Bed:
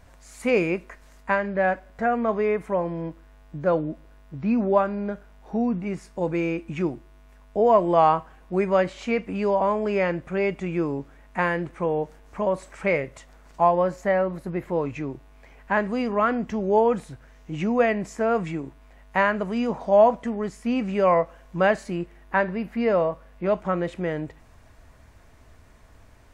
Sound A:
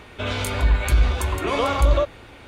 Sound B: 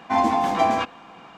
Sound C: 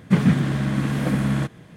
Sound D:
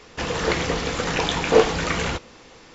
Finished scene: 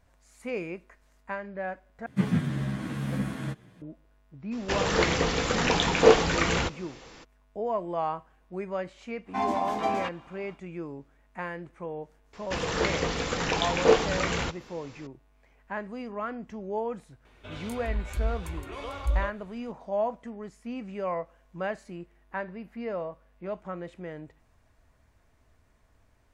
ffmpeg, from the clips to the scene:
-filter_complex "[4:a]asplit=2[s0][s1];[0:a]volume=0.251[s2];[3:a]asplit=2[s3][s4];[s4]adelay=10.9,afreqshift=-2[s5];[s3][s5]amix=inputs=2:normalize=1[s6];[1:a]asubboost=boost=7:cutoff=63[s7];[s2]asplit=2[s8][s9];[s8]atrim=end=2.064[s10];[s6]atrim=end=1.76,asetpts=PTS-STARTPTS,volume=0.501[s11];[s9]atrim=start=3.816[s12];[s0]atrim=end=2.74,asetpts=PTS-STARTPTS,volume=0.841,afade=t=in:d=0.02,afade=t=out:st=2.72:d=0.02,adelay=4510[s13];[2:a]atrim=end=1.37,asetpts=PTS-STARTPTS,volume=0.376,afade=t=in:d=0.1,afade=t=out:st=1.27:d=0.1,adelay=9240[s14];[s1]atrim=end=2.74,asetpts=PTS-STARTPTS,volume=0.596,afade=t=in:d=0.004:c=hsin,afade=t=out:st=2.736:d=0.004:c=hsin,adelay=12330[s15];[s7]atrim=end=2.47,asetpts=PTS-STARTPTS,volume=0.158,afade=t=in:d=0.004:c=hsin,afade=t=out:st=2.466:d=0.004:c=hsin,adelay=17250[s16];[s10][s11]acrossfade=d=0.004:c1=hsin:c2=hsin[s17];[s17][s12]acrossfade=d=0.004:c1=hsin:c2=hsin[s18];[s18][s13][s14][s15][s16]amix=inputs=5:normalize=0"

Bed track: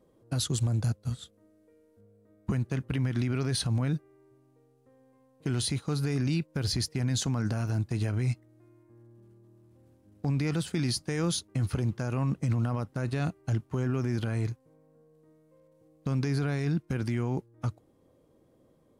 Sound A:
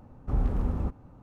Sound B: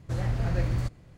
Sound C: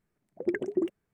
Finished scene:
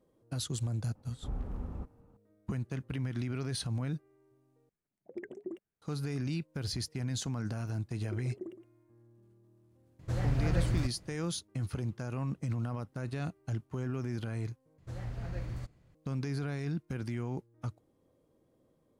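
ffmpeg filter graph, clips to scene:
-filter_complex "[3:a]asplit=2[s0][s1];[2:a]asplit=2[s2][s3];[0:a]volume=0.473[s4];[s1]aecho=1:1:115:0.282[s5];[s4]asplit=3[s6][s7][s8];[s6]atrim=end=4.694[s9];[s0]atrim=end=1.13,asetpts=PTS-STARTPTS,volume=0.211[s10];[s7]atrim=start=5.816:end=14.784[s11];[s3]atrim=end=1.17,asetpts=PTS-STARTPTS,volume=0.266[s12];[s8]atrim=start=15.946[s13];[1:a]atrim=end=1.22,asetpts=PTS-STARTPTS,volume=0.282,afade=t=in:d=0.004:c=hsin,afade=t=out:st=1.216:d=0.004:c=hsin,adelay=950[s14];[s5]atrim=end=1.13,asetpts=PTS-STARTPTS,volume=0.178,afade=t=in:d=0.004:c=hsin,afade=t=out:st=1.126:d=0.004:c=hsin,adelay=7640[s15];[s2]atrim=end=1.17,asetpts=PTS-STARTPTS,volume=0.708,afade=t=in:d=0.004:c=hsin,afade=t=out:st=1.166:d=0.004:c=hsin,adelay=9990[s16];[s9][s10]acrossfade=d=0.004:c1=hsin:c2=hsin[s17];[s17][s11]acrossfade=d=0.004:c1=hsin:c2=hsin[s18];[s18][s12]acrossfade=d=0.004:c1=hsin:c2=hsin[s19];[s19][s13]acrossfade=d=0.004:c1=hsin:c2=hsin[s20];[s20][s14][s15][s16]amix=inputs=4:normalize=0"

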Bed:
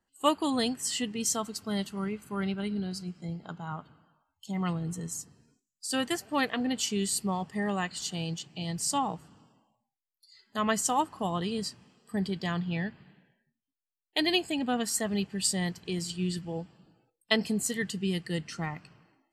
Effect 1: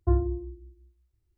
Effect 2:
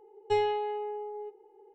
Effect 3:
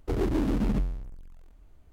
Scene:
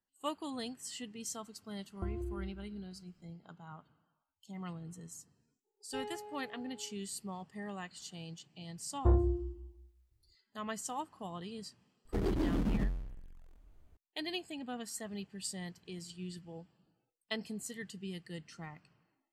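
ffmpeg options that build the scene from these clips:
-filter_complex "[1:a]asplit=2[s0][s1];[0:a]volume=0.237[s2];[s0]acompressor=threshold=0.0251:ratio=6:attack=3.2:release=140:knee=1:detection=peak[s3];[2:a]agate=range=0.0224:threshold=0.00447:ratio=3:release=100:detection=peak[s4];[s1]asoftclip=type=tanh:threshold=0.126[s5];[s3]atrim=end=1.37,asetpts=PTS-STARTPTS,volume=0.708,afade=t=in:d=0.004:c=hsin,afade=t=out:st=1.366:d=0.004:c=hsin,adelay=1950[s6];[s4]atrim=end=1.74,asetpts=PTS-STARTPTS,volume=0.158,afade=t=in:d=0.004:c=hsin,afade=t=out:st=1.736:d=0.004:c=hsin,adelay=5630[s7];[s5]atrim=end=1.37,asetpts=PTS-STARTPTS,volume=0.944,afade=t=in:d=0.004:c=hsin,afade=t=out:st=1.366:d=0.004:c=hsin,adelay=396018S[s8];[3:a]atrim=end=1.92,asetpts=PTS-STARTPTS,volume=0.501,afade=t=in:d=0.004:c=hsin,afade=t=out:st=1.916:d=0.004:c=hsin,adelay=12050[s9];[s2][s6][s7][s8][s9]amix=inputs=5:normalize=0"

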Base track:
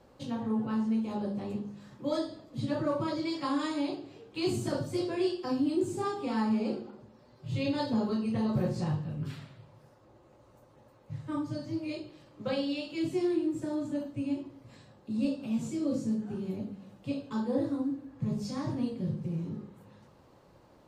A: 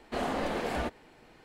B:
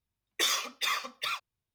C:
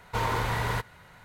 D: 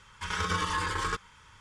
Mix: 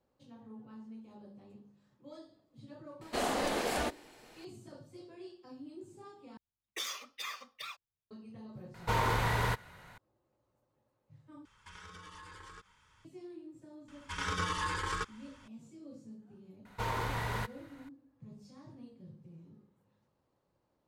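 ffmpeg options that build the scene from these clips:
-filter_complex "[3:a]asplit=2[s0][s1];[4:a]asplit=2[s2][s3];[0:a]volume=0.106[s4];[1:a]bass=f=250:g=-5,treble=f=4000:g=10[s5];[s2]acompressor=threshold=0.0141:ratio=6:attack=3.2:release=140:knee=1:detection=peak[s6];[s4]asplit=3[s7][s8][s9];[s7]atrim=end=6.374[s10];[2:a]atrim=end=1.74,asetpts=PTS-STARTPTS,volume=0.282[s11];[s8]atrim=start=8.106:end=11.454[s12];[s6]atrim=end=1.6,asetpts=PTS-STARTPTS,volume=0.282[s13];[s9]atrim=start=13.046[s14];[s5]atrim=end=1.44,asetpts=PTS-STARTPTS,volume=0.944,afade=t=in:d=0.004:c=hsin,afade=t=out:st=1.436:d=0.004:c=hsin,adelay=3010[s15];[s0]atrim=end=1.24,asetpts=PTS-STARTPTS,volume=0.794,afade=t=in:d=0.004:c=hsin,afade=t=out:st=1.236:d=0.004:c=hsin,adelay=385434S[s16];[s3]atrim=end=1.6,asetpts=PTS-STARTPTS,volume=0.596,afade=t=in:d=0.004:c=hsin,afade=t=out:st=1.596:d=0.004:c=hsin,adelay=13880[s17];[s1]atrim=end=1.24,asetpts=PTS-STARTPTS,volume=0.447,afade=t=in:d=0.004:c=hsin,afade=t=out:st=1.236:d=0.004:c=hsin,adelay=16650[s18];[s10][s11]acrossfade=d=0.004:c1=hsin:c2=hsin[s19];[s19][s12]acrossfade=d=0.004:c1=hsin:c2=hsin[s20];[s20][s13]acrossfade=d=0.004:c1=hsin:c2=hsin[s21];[s21][s14]acrossfade=d=0.004:c1=hsin:c2=hsin[s22];[s22][s15][s16][s17][s18]amix=inputs=5:normalize=0"

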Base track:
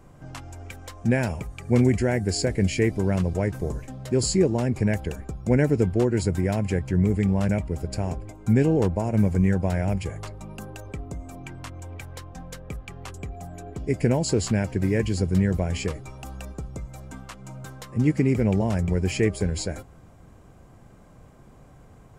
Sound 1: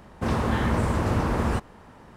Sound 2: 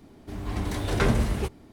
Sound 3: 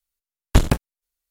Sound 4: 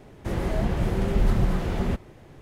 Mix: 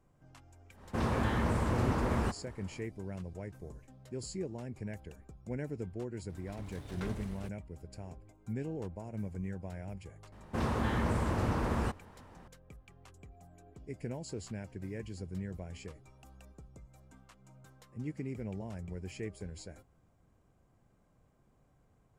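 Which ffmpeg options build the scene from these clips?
-filter_complex "[1:a]asplit=2[s0][s1];[0:a]volume=0.119[s2];[2:a]aeval=exprs='sgn(val(0))*max(abs(val(0))-0.0106,0)':c=same[s3];[s0]atrim=end=2.16,asetpts=PTS-STARTPTS,volume=0.447,afade=t=in:d=0.1,afade=t=out:st=2.06:d=0.1,adelay=720[s4];[s3]atrim=end=1.72,asetpts=PTS-STARTPTS,volume=0.133,afade=t=in:d=0.004:c=hsin,afade=t=out:st=1.716:d=0.004:c=hsin,adelay=6010[s5];[s1]atrim=end=2.16,asetpts=PTS-STARTPTS,volume=0.422,afade=t=in:d=0.004:c=hsin,afade=t=out:st=2.156:d=0.004:c=hsin,adelay=10320[s6];[s2][s4][s5][s6]amix=inputs=4:normalize=0"

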